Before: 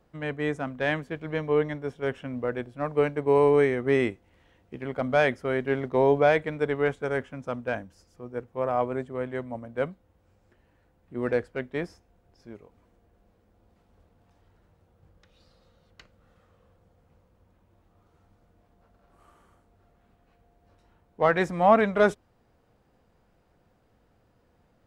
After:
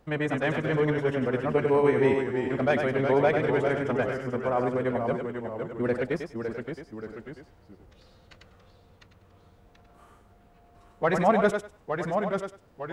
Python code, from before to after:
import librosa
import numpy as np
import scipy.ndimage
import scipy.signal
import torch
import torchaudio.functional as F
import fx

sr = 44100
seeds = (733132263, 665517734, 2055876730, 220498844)

p1 = fx.over_compress(x, sr, threshold_db=-32.0, ratio=-1.0)
p2 = x + F.gain(torch.from_numpy(p1), -2.5).numpy()
p3 = fx.echo_pitch(p2, sr, ms=400, semitones=-1, count=2, db_per_echo=-6.0)
p4 = fx.echo_thinned(p3, sr, ms=188, feedback_pct=17, hz=240.0, wet_db=-5.5)
p5 = fx.stretch_vocoder(p4, sr, factor=0.52)
y = F.gain(torch.from_numpy(p5), -2.0).numpy()